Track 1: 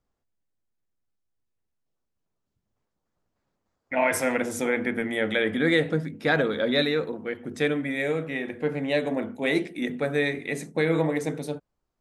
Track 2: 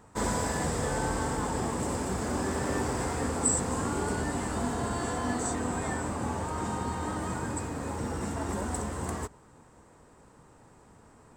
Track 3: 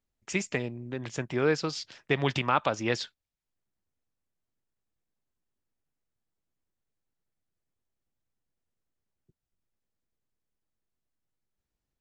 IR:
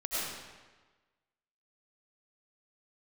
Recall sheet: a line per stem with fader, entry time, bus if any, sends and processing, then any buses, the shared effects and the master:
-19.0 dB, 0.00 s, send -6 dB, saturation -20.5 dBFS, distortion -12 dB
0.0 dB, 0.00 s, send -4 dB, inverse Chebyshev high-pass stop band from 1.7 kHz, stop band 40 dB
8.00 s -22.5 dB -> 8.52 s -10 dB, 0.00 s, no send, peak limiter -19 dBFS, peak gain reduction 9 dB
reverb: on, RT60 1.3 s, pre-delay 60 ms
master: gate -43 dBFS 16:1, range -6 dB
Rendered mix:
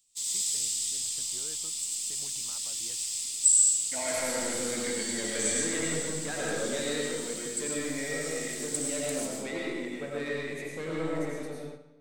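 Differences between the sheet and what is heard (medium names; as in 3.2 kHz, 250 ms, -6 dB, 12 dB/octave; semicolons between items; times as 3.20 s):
stem 1: send -6 dB -> 0 dB; reverb return +6.5 dB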